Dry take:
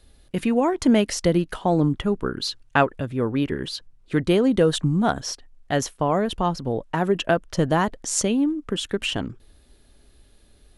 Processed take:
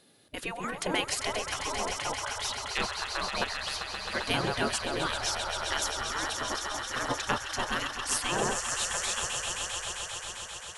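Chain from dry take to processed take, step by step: echo with a slow build-up 132 ms, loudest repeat 5, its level -11 dB; spectral gate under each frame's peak -15 dB weak

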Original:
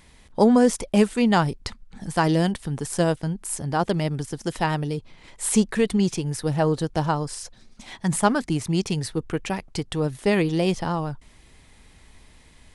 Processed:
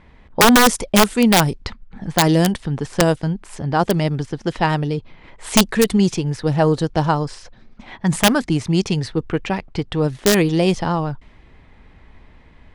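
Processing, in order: level-controlled noise filter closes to 1.9 kHz, open at -15.5 dBFS; integer overflow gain 10 dB; trim +5.5 dB

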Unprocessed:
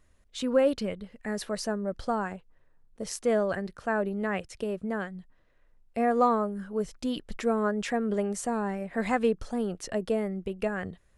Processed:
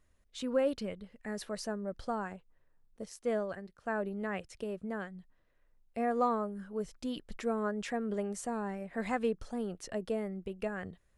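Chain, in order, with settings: 3.05–3.86 s: upward expansion 1.5:1, over -39 dBFS; trim -6.5 dB

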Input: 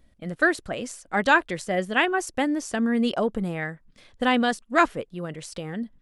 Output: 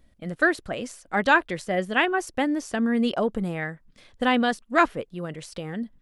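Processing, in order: dynamic bell 7.7 kHz, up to -5 dB, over -46 dBFS, Q 1.1

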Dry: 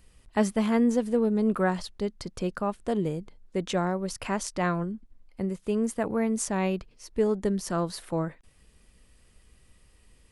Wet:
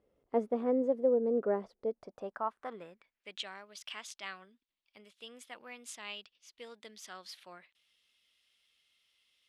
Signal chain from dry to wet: band-pass sweep 430 Hz -> 3.1 kHz, 1.94–3.78 s; speed mistake 44.1 kHz file played as 48 kHz

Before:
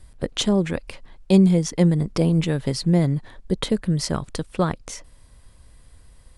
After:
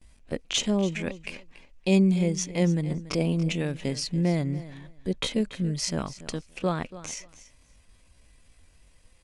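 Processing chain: gate with hold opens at -41 dBFS; fifteen-band graphic EQ 100 Hz -3 dB, 250 Hz +4 dB, 630 Hz +3 dB, 2.5 kHz +11 dB, 6.3 kHz +8 dB; tempo 0.69×; feedback delay 284 ms, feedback 16%, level -16 dB; trim -8 dB

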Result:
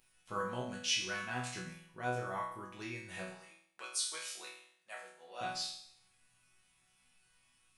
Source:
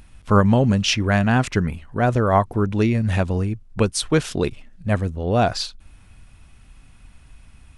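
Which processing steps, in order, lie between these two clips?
3.30–5.41 s: high-pass 790 Hz 12 dB/octave; tilt EQ +3 dB/octave; chord resonator B2 sus4, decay 0.65 s

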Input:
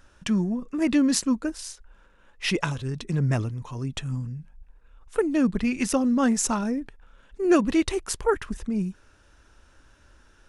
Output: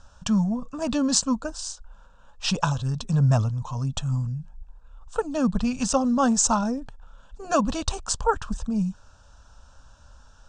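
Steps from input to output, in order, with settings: steep low-pass 8.4 kHz 72 dB/octave; static phaser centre 860 Hz, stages 4; trim +6.5 dB

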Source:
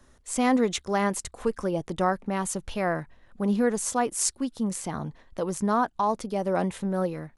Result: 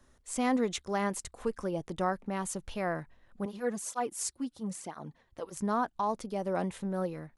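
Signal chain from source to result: 3.45–5.57 s: cancelling through-zero flanger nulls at 1 Hz, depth 5.8 ms; trim -6 dB

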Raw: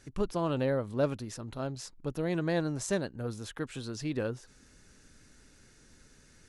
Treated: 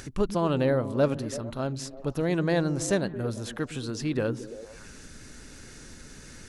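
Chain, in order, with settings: on a send: repeats whose band climbs or falls 112 ms, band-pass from 190 Hz, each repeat 0.7 oct, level -7.5 dB; on the sum: upward compressor, threshold -41 dBFS; trim +5 dB

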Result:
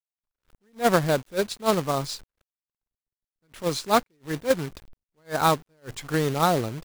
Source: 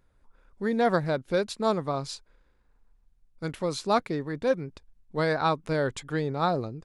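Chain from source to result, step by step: companded quantiser 4-bit; attacks held to a fixed rise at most 340 dB/s; trim +4 dB

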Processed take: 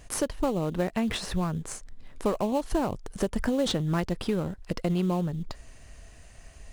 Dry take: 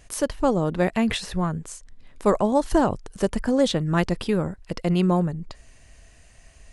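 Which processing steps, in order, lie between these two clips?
in parallel at -9.5 dB: sample-rate reducer 3.5 kHz, jitter 20%; 3.36–4.05 s: on the sum: transient shaper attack +3 dB, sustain +7 dB; compression 3:1, threshold -26 dBFS, peak gain reduction 11 dB

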